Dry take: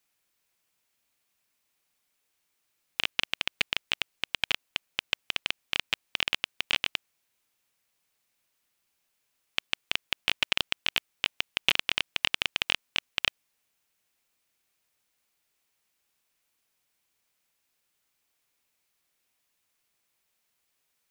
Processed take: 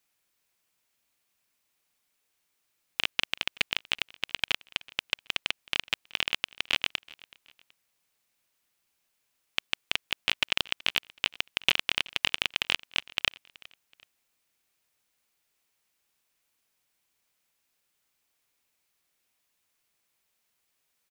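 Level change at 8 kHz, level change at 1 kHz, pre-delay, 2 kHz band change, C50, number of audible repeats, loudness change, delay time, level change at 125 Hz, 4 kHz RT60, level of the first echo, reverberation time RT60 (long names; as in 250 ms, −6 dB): 0.0 dB, 0.0 dB, no reverb audible, 0.0 dB, no reverb audible, 2, 0.0 dB, 376 ms, 0.0 dB, no reverb audible, −23.0 dB, no reverb audible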